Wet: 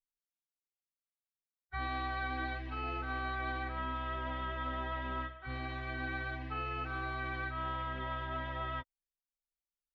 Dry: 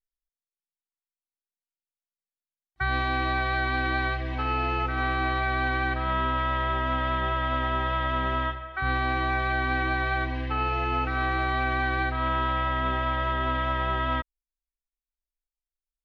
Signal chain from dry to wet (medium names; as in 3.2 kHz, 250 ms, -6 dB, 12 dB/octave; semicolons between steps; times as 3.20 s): plain phase-vocoder stretch 0.62×; trim -8.5 dB